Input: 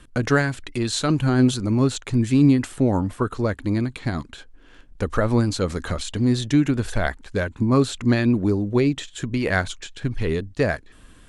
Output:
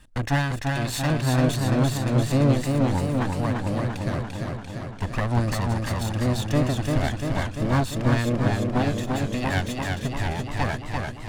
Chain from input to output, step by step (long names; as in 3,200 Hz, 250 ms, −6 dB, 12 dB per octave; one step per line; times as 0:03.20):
lower of the sound and its delayed copy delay 1.1 ms
feedback echo with a swinging delay time 343 ms, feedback 68%, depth 54 cents, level −3.5 dB
level −3 dB